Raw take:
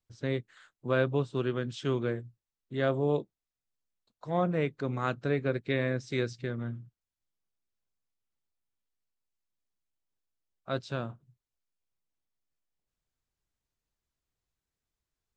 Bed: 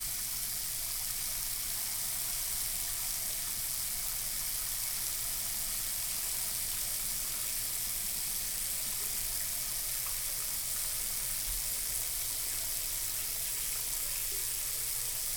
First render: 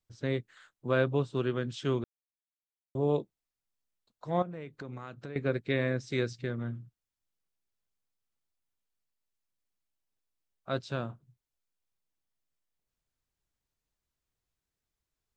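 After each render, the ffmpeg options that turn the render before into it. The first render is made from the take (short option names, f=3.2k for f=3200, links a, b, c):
-filter_complex "[0:a]asettb=1/sr,asplit=3[a][b][c];[a]atrim=end=4.424[d];[b]atrim=start=4.42:end=5.36,asetpts=PTS-STARTPTS,afade=t=in:d=0.004:c=qsin,afade=t=out:st=0.936:d=0.004:c=qsin,acompressor=threshold=-38dB:ratio=6:attack=3.2:release=140:knee=1:detection=peak[e];[c]atrim=start=5.356[f];[d][e]acrossfade=d=0.004:c1=hsin:c2=qsin[g];[g][f]acrossfade=d=0.004:c1=qsin:c2=hsin,asplit=3[h][i][j];[h]atrim=end=2.04,asetpts=PTS-STARTPTS,afade=t=out:st=2.036:d=0.004:c=hsin[k];[i]atrim=start=2.04:end=2.95,asetpts=PTS-STARTPTS,volume=0[l];[j]atrim=start=2.95,asetpts=PTS-STARTPTS,afade=t=in:d=0.004:c=hsin[m];[k][l][m]concat=n=3:v=0:a=1"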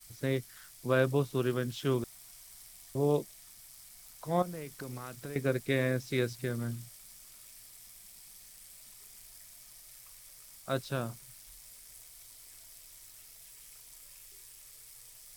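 -filter_complex "[1:a]volume=-18dB[a];[0:a][a]amix=inputs=2:normalize=0"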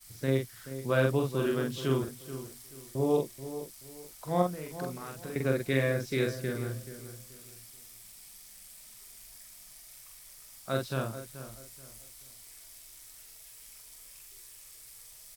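-filter_complex "[0:a]asplit=2[a][b];[b]adelay=45,volume=-3dB[c];[a][c]amix=inputs=2:normalize=0,asplit=2[d][e];[e]adelay=431,lowpass=f=2k:p=1,volume=-12dB,asplit=2[f][g];[g]adelay=431,lowpass=f=2k:p=1,volume=0.3,asplit=2[h][i];[i]adelay=431,lowpass=f=2k:p=1,volume=0.3[j];[d][f][h][j]amix=inputs=4:normalize=0"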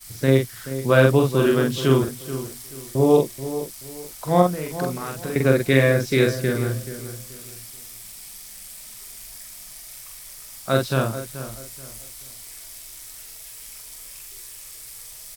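-af "volume=11dB,alimiter=limit=-2dB:level=0:latency=1"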